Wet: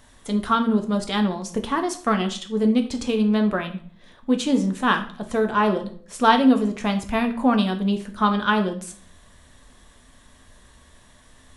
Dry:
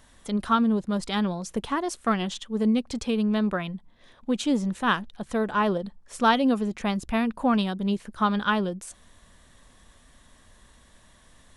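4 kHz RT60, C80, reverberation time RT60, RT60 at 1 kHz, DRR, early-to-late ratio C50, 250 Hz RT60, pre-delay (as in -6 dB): 0.40 s, 16.0 dB, 0.50 s, 0.50 s, 5.0 dB, 12.0 dB, 0.65 s, 5 ms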